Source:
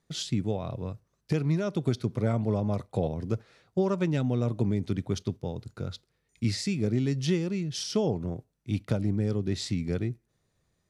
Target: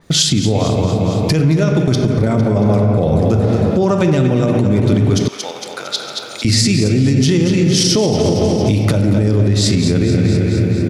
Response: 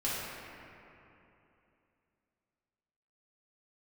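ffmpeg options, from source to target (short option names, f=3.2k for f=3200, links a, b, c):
-filter_complex "[0:a]aecho=1:1:228|456|684|912|1140|1368:0.355|0.181|0.0923|0.0471|0.024|0.0122,dynaudnorm=f=200:g=13:m=9dB,asplit=3[a][b][c];[a]afade=t=out:st=1.64:d=0.02[d];[b]agate=range=-21dB:threshold=-19dB:ratio=16:detection=peak,afade=t=in:st=1.64:d=0.02,afade=t=out:st=3.04:d=0.02[e];[c]afade=t=in:st=3.04:d=0.02[f];[d][e][f]amix=inputs=3:normalize=0,asplit=2[g][h];[h]highshelf=f=9k:g=-9[i];[1:a]atrim=start_sample=2205,asetrate=48510,aresample=44100[j];[i][j]afir=irnorm=-1:irlink=0,volume=-8dB[k];[g][k]amix=inputs=2:normalize=0,acompressor=threshold=-35dB:ratio=3,asettb=1/sr,asplit=3[l][m][n];[l]atrim=end=5.284[o];[m]atrim=start=5.28:end=6.45,asetpts=PTS-STARTPTS,afade=t=in:d=0.004:c=qsin,afade=t=out:st=1.166:d=0.004:c=qsin,highpass=1k[p];[n]atrim=start=6.446[q];[o][p]acrossfade=d=0.004:c1=hsin:c2=qsin[r];[r][q]acrossfade=d=0.004:c1=qsin:c2=hsin,alimiter=level_in=27dB:limit=-1dB:release=50:level=0:latency=1,adynamicequalizer=threshold=0.0355:dfrequency=4600:dqfactor=0.7:tfrequency=4600:tqfactor=0.7:attack=5:release=100:ratio=0.375:range=3:mode=boostabove:tftype=highshelf,volume=-4.5dB"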